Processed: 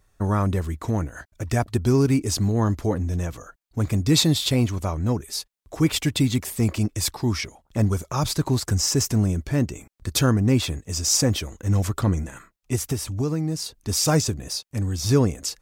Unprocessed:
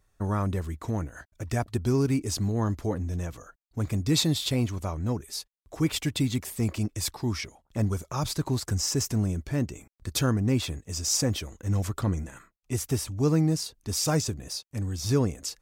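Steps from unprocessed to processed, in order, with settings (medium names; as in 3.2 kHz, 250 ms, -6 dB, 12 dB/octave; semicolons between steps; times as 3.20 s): 12.75–13.74 s: compression 6:1, threshold -27 dBFS, peak gain reduction 9 dB; trim +5.5 dB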